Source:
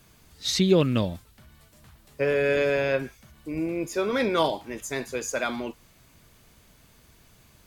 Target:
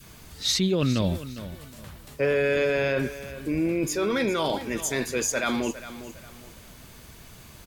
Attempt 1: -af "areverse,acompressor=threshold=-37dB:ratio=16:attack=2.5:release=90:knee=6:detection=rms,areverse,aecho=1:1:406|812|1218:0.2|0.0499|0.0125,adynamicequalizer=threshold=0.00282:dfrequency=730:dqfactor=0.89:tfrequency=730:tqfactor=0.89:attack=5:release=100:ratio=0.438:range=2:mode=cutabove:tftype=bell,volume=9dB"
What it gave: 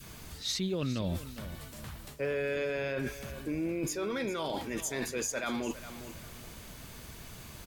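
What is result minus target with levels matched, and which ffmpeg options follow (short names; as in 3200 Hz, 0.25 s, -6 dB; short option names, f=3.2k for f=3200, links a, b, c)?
compressor: peak gain reduction +9.5 dB
-af "areverse,acompressor=threshold=-27dB:ratio=16:attack=2.5:release=90:knee=6:detection=rms,areverse,aecho=1:1:406|812|1218:0.2|0.0499|0.0125,adynamicequalizer=threshold=0.00282:dfrequency=730:dqfactor=0.89:tfrequency=730:tqfactor=0.89:attack=5:release=100:ratio=0.438:range=2:mode=cutabove:tftype=bell,volume=9dB"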